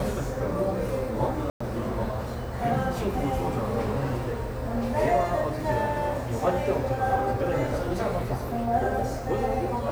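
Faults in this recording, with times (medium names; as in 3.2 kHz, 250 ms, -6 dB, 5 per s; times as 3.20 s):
1.50–1.60 s: dropout 105 ms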